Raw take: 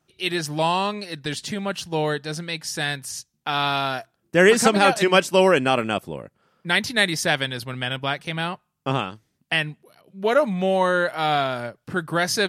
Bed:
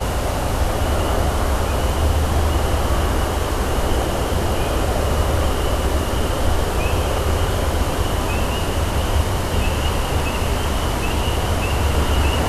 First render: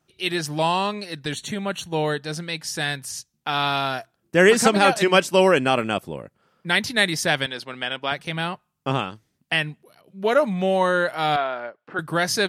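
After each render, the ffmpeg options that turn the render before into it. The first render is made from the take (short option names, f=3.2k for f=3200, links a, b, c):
-filter_complex "[0:a]asplit=3[a][b][c];[a]afade=t=out:st=1.31:d=0.02[d];[b]asuperstop=centerf=5000:order=20:qfactor=4.8,afade=t=in:st=1.31:d=0.02,afade=t=out:st=2.2:d=0.02[e];[c]afade=t=in:st=2.2:d=0.02[f];[d][e][f]amix=inputs=3:normalize=0,asettb=1/sr,asplit=3[g][h][i];[g]atrim=end=7.464[j];[h]atrim=start=7.46:end=8.12,asetpts=PTS-STARTPTS,afade=t=in:d=0.004:c=qsin,afade=t=out:st=0.656:d=0.004:c=qsin,highpass=290,lowpass=7.3k[k];[i]atrim=start=8.116[l];[j][k]acrossfade=d=0.004:c1=hsin:c2=qsin[m];[m][l]acrossfade=d=0.004:c1=qsin:c2=hsin,asettb=1/sr,asplit=3[n][o][p];[n]atrim=end=11.364[q];[o]atrim=start=11.36:end=11.99,asetpts=PTS-STARTPTS,afade=t=in:d=0.004:c=qsin,afade=t=out:st=0.626:d=0.004:c=qsin,highpass=430,lowpass=2.3k[r];[p]atrim=start=11.986[s];[q][r]acrossfade=d=0.004:c1=hsin:c2=qsin[t];[t][s]acrossfade=d=0.004:c1=qsin:c2=hsin"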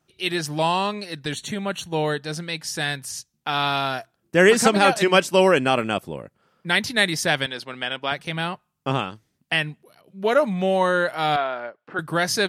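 -af anull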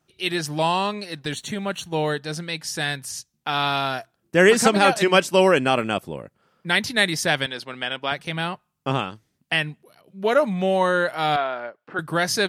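-filter_complex "[0:a]asettb=1/sr,asplit=3[a][b][c];[a]atrim=end=1.134[d];[b]atrim=start=1.13:end=2.19,asetpts=PTS-STARTPTS,afade=t=in:d=0.004:c=qsin,afade=t=out:st=1.056:d=0.004:c=qsin,aeval=exprs='sgn(val(0))*max(abs(val(0))-0.0015,0)':c=same[e];[c]atrim=start=2.186[f];[d][e]acrossfade=d=0.004:c1=hsin:c2=qsin[g];[g][f]acrossfade=d=0.004:c1=qsin:c2=hsin"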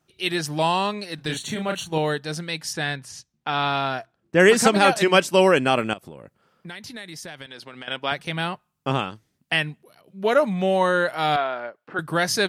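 -filter_complex "[0:a]asettb=1/sr,asplit=3[a][b][c];[a]atrim=end=1.154[d];[b]atrim=start=1.15:end=1.98,asetpts=PTS-STARTPTS,afade=t=in:d=0.004:c=qsin,afade=t=out:st=0.826:d=0.004:c=qsin,asplit=2[e][f];[f]adelay=32,volume=-4.5dB[g];[e][g]amix=inputs=2:normalize=0,atrim=end_sample=36603[h];[c]atrim=start=1.976[i];[d][h]acrossfade=d=0.004:c1=hsin:c2=qsin[j];[j][i]acrossfade=d=0.004:c1=qsin:c2=hsin,asettb=1/sr,asplit=3[k][l][m];[k]atrim=end=2.734[n];[l]atrim=start=2.73:end=4.4,asetpts=PTS-STARTPTS,afade=t=in:d=0.004:c=qsin,afade=t=out:st=1.666:d=0.004:c=qsin,aemphasis=mode=reproduction:type=50fm[o];[m]atrim=start=4.396[p];[n][o]acrossfade=d=0.004:c1=hsin:c2=qsin[q];[q][p]acrossfade=d=0.004:c1=qsin:c2=hsin,asettb=1/sr,asplit=3[r][s][t];[r]atrim=end=5.934[u];[s]atrim=start=5.93:end=7.88,asetpts=PTS-STARTPTS,afade=t=in:d=0.004:c=qsin,afade=t=out:st=1.946:d=0.004:c=qsin,acompressor=threshold=-35dB:ratio=6:attack=3.2:release=140:knee=1:detection=peak[v];[t]atrim=start=7.876[w];[u][v]acrossfade=d=0.004:c1=hsin:c2=qsin[x];[x][w]acrossfade=d=0.004:c1=qsin:c2=hsin"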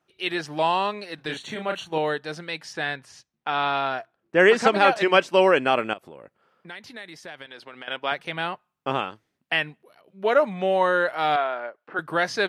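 -filter_complex "[0:a]acrossover=split=7000[a][b];[b]acompressor=threshold=-46dB:ratio=4:attack=1:release=60[c];[a][c]amix=inputs=2:normalize=0,bass=f=250:g=-11,treble=f=4k:g=-10"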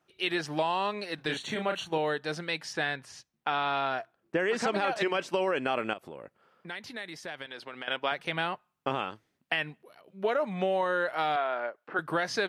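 -af "alimiter=limit=-12.5dB:level=0:latency=1:release=13,acompressor=threshold=-25dB:ratio=5"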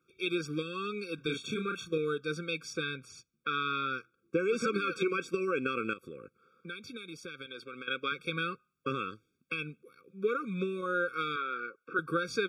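-af "afftfilt=real='re*eq(mod(floor(b*sr/1024/540),2),0)':imag='im*eq(mod(floor(b*sr/1024/540),2),0)':win_size=1024:overlap=0.75"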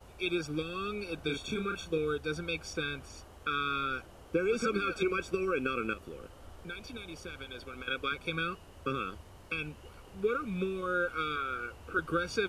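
-filter_complex "[1:a]volume=-32.5dB[a];[0:a][a]amix=inputs=2:normalize=0"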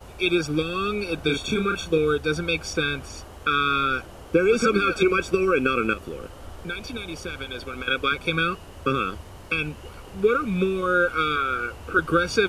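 -af "volume=10.5dB"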